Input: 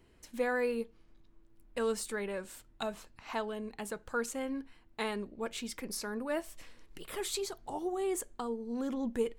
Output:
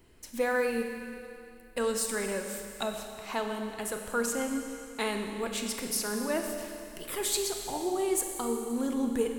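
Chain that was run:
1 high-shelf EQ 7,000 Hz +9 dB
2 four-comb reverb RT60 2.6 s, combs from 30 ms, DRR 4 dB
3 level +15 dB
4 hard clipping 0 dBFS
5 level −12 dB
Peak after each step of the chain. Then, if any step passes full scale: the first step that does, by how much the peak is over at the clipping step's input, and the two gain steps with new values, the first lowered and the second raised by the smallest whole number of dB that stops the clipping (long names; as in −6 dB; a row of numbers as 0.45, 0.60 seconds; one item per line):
−17.5, −17.0, −2.0, −2.0, −14.0 dBFS
no step passes full scale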